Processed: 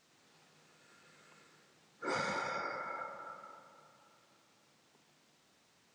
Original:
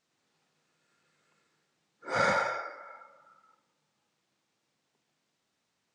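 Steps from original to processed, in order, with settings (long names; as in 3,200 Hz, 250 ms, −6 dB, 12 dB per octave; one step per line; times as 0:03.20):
0:02.06–0:02.98: graphic EQ with 15 bands 100 Hz −7 dB, 630 Hz −8 dB, 1,600 Hz −6 dB
downward compressor 16 to 1, threshold −43 dBFS, peak gain reduction 17 dB
delay with a low-pass on its return 282 ms, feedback 51%, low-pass 1,200 Hz, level −9 dB
level +9.5 dB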